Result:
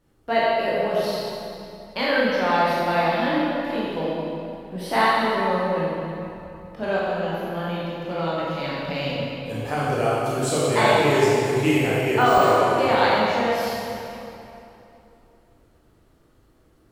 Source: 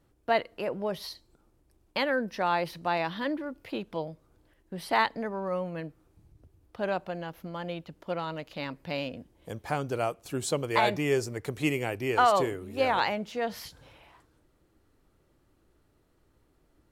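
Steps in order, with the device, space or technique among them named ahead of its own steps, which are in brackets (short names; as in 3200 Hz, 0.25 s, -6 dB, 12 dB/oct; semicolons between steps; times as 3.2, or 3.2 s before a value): tunnel (flutter echo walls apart 6.2 m, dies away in 0.2 s; reverb RT60 2.8 s, pre-delay 15 ms, DRR -7.5 dB); 12.13–12.99 de-esser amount 70%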